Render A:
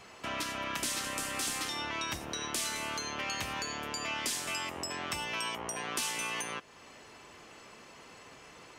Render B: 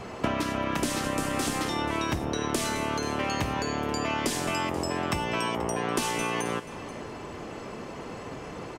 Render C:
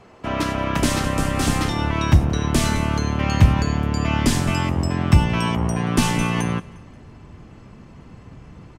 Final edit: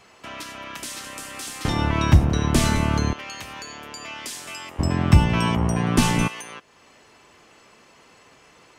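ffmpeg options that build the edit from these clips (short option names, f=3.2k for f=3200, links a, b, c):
-filter_complex "[2:a]asplit=2[a][b];[0:a]asplit=3[c][d][e];[c]atrim=end=1.652[f];[a]atrim=start=1.648:end=3.132[g];[d]atrim=start=3.128:end=4.792[h];[b]atrim=start=4.788:end=6.282[i];[e]atrim=start=6.278[j];[f][g]acrossfade=d=0.004:c1=hsin:c2=hsin[k];[k][h]acrossfade=d=0.004:c1=hsin:c2=hsin[l];[l][i]acrossfade=d=0.004:c1=hsin:c2=hsin[m];[m][j]acrossfade=d=0.004:c1=hsin:c2=hsin"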